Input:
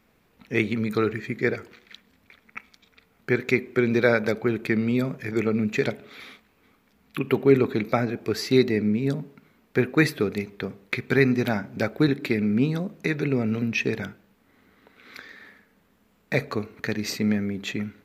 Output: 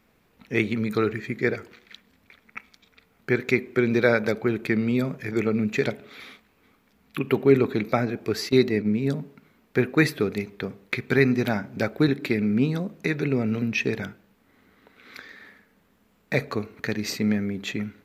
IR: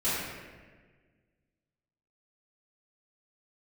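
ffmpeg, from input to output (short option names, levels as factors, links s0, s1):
-filter_complex "[0:a]asettb=1/sr,asplit=3[s0][s1][s2];[s0]atrim=end=8.494[s3];[s1]atrim=start=8.49:end=8.97,asetpts=PTS-STARTPTS,afade=t=in:d=0.004:c=qsin,afade=t=out:st=0.476:d=0.004:c=qsin,agate=range=0.251:threshold=0.0708:ratio=16:detection=peak[s4];[s2]atrim=start=8.966[s5];[s3][s4]acrossfade=d=0.004:c1=hsin:c2=qsin[s6];[s6][s5]acrossfade=d=0.004:c1=qsin:c2=hsin"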